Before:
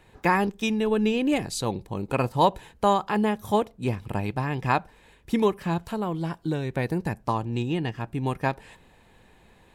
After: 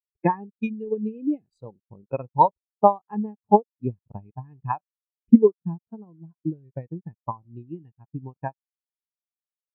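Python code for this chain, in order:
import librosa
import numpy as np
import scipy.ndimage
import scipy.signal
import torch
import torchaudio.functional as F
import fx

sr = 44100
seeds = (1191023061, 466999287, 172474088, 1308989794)

y = fx.transient(x, sr, attack_db=11, sustain_db=-1)
y = fx.quant_dither(y, sr, seeds[0], bits=6, dither='none')
y = fx.spectral_expand(y, sr, expansion=2.5)
y = y * librosa.db_to_amplitude(-1.0)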